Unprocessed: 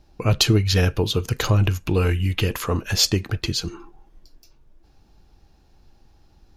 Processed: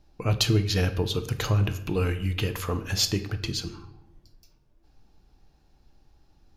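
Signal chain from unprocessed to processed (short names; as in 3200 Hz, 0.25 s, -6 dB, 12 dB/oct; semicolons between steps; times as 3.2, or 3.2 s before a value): shoebox room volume 280 m³, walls mixed, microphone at 0.37 m; gain -6 dB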